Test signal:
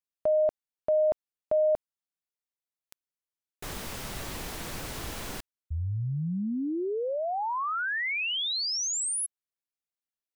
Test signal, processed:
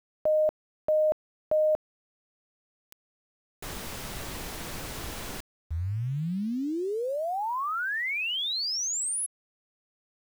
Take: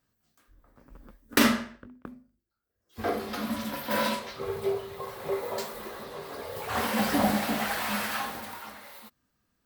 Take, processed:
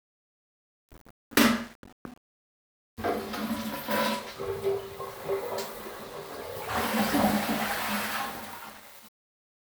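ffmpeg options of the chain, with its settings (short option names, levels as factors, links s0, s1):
-af "aeval=exprs='val(0)*gte(abs(val(0)),0.00562)':c=same"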